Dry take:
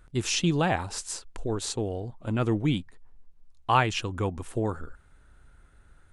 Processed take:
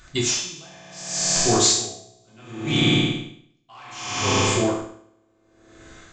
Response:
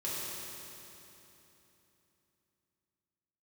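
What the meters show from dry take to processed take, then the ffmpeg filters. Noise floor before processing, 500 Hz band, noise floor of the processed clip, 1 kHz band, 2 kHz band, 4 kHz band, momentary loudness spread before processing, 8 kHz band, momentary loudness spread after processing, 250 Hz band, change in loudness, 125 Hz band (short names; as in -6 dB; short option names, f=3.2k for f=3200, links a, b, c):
-58 dBFS, +4.5 dB, -63 dBFS, +0.5 dB, +5.0 dB, +11.5 dB, 11 LU, +14.0 dB, 22 LU, +4.5 dB, +7.5 dB, +2.0 dB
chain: -filter_complex "[0:a]crystalizer=i=9.5:c=0[a];[1:a]atrim=start_sample=2205,asetrate=83790,aresample=44100[b];[a][b]afir=irnorm=-1:irlink=0,aresample=16000,asoftclip=type=tanh:threshold=-17dB,aresample=44100,acontrast=25,aeval=exprs='val(0)*pow(10,-34*(0.5-0.5*cos(2*PI*0.67*n/s))/20)':c=same,volume=7dB"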